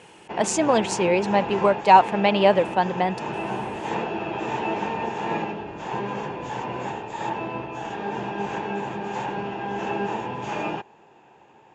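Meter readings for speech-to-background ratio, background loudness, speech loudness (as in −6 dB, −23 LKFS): 9.5 dB, −30.0 LKFS, −20.5 LKFS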